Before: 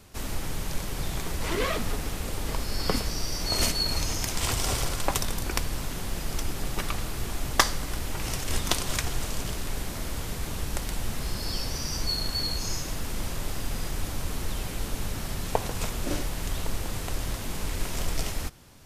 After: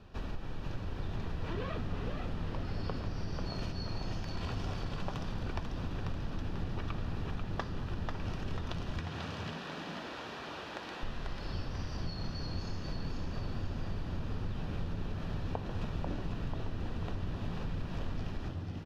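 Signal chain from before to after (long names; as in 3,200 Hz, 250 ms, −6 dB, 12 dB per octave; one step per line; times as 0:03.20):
sub-octave generator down 2 octaves, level −1 dB
0:09.00–0:11.03: meter weighting curve A
downward compressor, threshold −32 dBFS, peak gain reduction 17 dB
Butterworth band-reject 2,100 Hz, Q 7.5
high-frequency loss of the air 270 metres
echo with shifted repeats 491 ms, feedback 49%, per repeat +75 Hz, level −5 dB
level −1.5 dB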